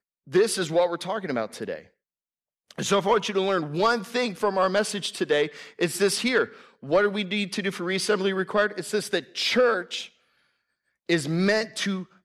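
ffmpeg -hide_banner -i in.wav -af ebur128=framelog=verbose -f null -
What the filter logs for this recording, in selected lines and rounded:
Integrated loudness:
  I:         -25.0 LUFS
  Threshold: -35.4 LUFS
Loudness range:
  LRA:         2.1 LU
  Threshold: -45.5 LUFS
  LRA low:   -26.8 LUFS
  LRA high:  -24.6 LUFS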